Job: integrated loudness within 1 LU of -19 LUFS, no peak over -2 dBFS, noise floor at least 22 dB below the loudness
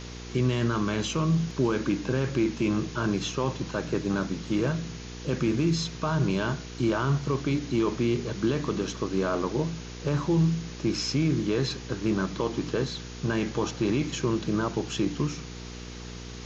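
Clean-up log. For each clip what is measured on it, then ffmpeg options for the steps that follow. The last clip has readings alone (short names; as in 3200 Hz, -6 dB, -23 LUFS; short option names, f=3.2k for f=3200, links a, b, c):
hum 60 Hz; harmonics up to 480 Hz; hum level -39 dBFS; noise floor -40 dBFS; noise floor target -50 dBFS; loudness -28.0 LUFS; peak -14.0 dBFS; loudness target -19.0 LUFS
-> -af "bandreject=f=60:t=h:w=4,bandreject=f=120:t=h:w=4,bandreject=f=180:t=h:w=4,bandreject=f=240:t=h:w=4,bandreject=f=300:t=h:w=4,bandreject=f=360:t=h:w=4,bandreject=f=420:t=h:w=4,bandreject=f=480:t=h:w=4"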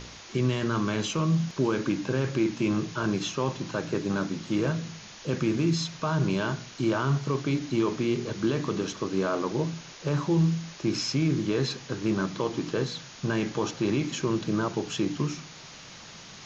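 hum none; noise floor -46 dBFS; noise floor target -51 dBFS
-> -af "afftdn=nr=6:nf=-46"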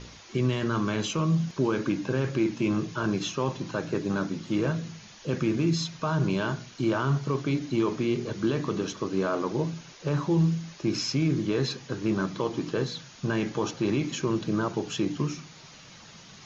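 noise floor -49 dBFS; noise floor target -51 dBFS
-> -af "afftdn=nr=6:nf=-49"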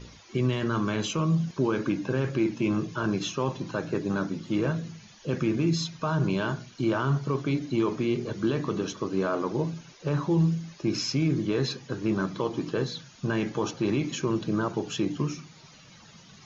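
noise floor -52 dBFS; loudness -28.5 LUFS; peak -14.0 dBFS; loudness target -19.0 LUFS
-> -af "volume=9.5dB"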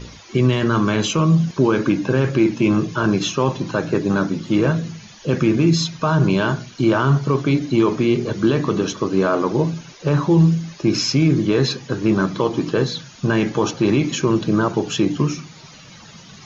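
loudness -19.0 LUFS; peak -4.5 dBFS; noise floor -43 dBFS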